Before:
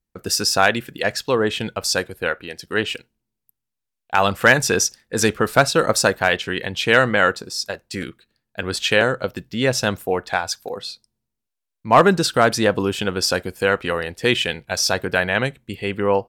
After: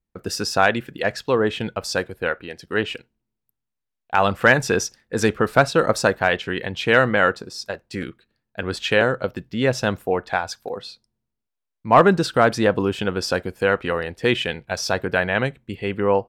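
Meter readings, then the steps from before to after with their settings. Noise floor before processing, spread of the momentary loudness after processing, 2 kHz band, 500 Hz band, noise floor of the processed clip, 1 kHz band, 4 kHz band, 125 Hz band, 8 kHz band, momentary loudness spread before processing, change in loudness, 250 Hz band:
−82 dBFS, 14 LU, −2.0 dB, 0.0 dB, −82 dBFS, −0.5 dB, −5.5 dB, 0.0 dB, −8.5 dB, 12 LU, −1.5 dB, 0.0 dB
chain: high-shelf EQ 4,000 Hz −11.5 dB

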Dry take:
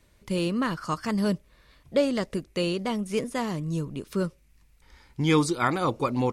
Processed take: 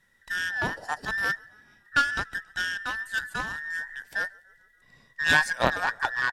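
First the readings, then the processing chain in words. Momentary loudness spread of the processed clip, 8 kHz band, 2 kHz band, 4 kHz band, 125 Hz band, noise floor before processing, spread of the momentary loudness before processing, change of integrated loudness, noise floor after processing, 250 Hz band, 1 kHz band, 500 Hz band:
11 LU, −0.5 dB, +12.5 dB, +2.5 dB, −12.0 dB, −61 dBFS, 8 LU, 0.0 dB, −63 dBFS, −15.5 dB, +1.0 dB, −9.5 dB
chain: frequency inversion band by band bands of 2,000 Hz
low-shelf EQ 280 Hz +9.5 dB
echo with shifted repeats 144 ms, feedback 55%, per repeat −37 Hz, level −21.5 dB
harmonic generator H 2 −10 dB, 7 −23 dB, 8 −35 dB, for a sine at −7.5 dBFS

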